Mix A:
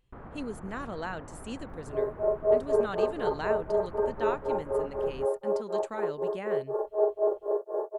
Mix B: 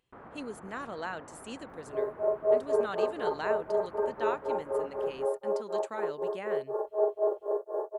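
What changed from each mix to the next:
master: add high-pass filter 350 Hz 6 dB per octave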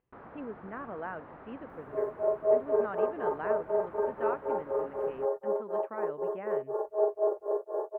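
speech: add Bessel low-pass filter 1,400 Hz, order 8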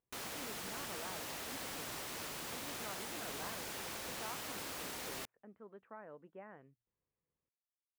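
speech −10.5 dB
first sound: remove low-pass filter 1,400 Hz 24 dB per octave
second sound: muted

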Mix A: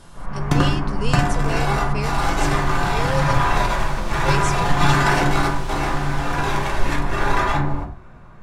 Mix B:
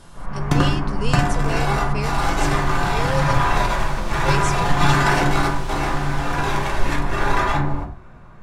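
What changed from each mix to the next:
nothing changed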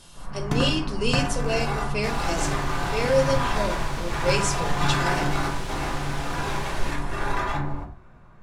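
speech: send +10.5 dB
first sound −7.0 dB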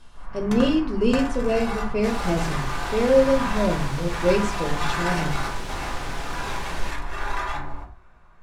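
speech: add spectral tilt −4.5 dB per octave
first sound: add octave-band graphic EQ 125/250/500 Hz −11/−7/−4 dB

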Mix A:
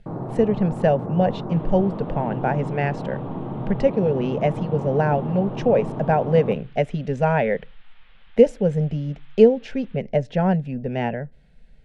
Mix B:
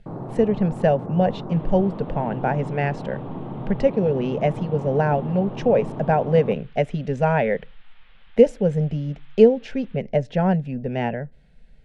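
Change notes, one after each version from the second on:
first sound: send −9.5 dB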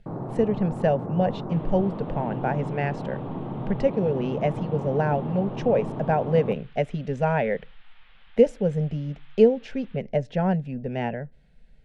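speech −3.5 dB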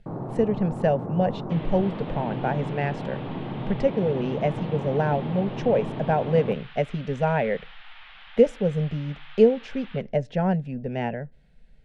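second sound +11.5 dB

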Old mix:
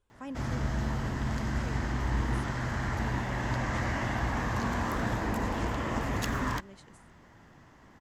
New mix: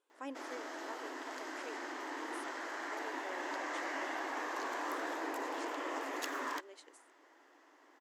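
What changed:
background −5.0 dB
master: add linear-phase brick-wall high-pass 270 Hz

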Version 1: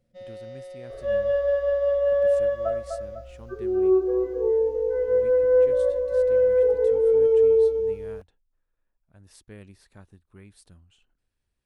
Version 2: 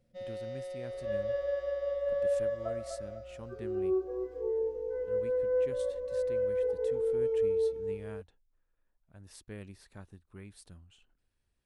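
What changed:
second sound −11.5 dB
reverb: on, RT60 1.4 s

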